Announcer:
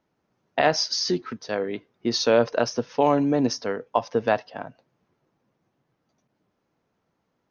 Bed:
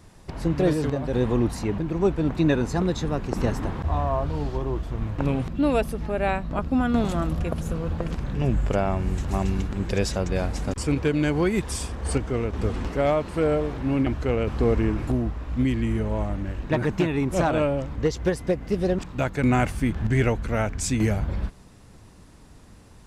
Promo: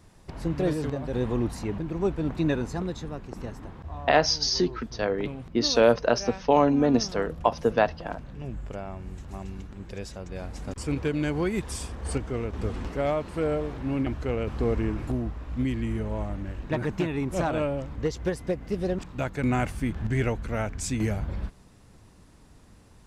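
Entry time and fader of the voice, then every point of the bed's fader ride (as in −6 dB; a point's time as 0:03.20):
3.50 s, 0.0 dB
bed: 0:02.52 −4.5 dB
0:03.51 −13 dB
0:10.22 −13 dB
0:10.95 −4.5 dB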